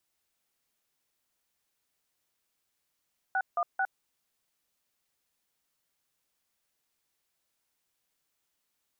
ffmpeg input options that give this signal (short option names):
-f lavfi -i "aevalsrc='0.0398*clip(min(mod(t,0.221),0.059-mod(t,0.221))/0.002,0,1)*(eq(floor(t/0.221),0)*(sin(2*PI*770*mod(t,0.221))+sin(2*PI*1477*mod(t,0.221)))+eq(floor(t/0.221),1)*(sin(2*PI*697*mod(t,0.221))+sin(2*PI*1209*mod(t,0.221)))+eq(floor(t/0.221),2)*(sin(2*PI*770*mod(t,0.221))+sin(2*PI*1477*mod(t,0.221))))':d=0.663:s=44100"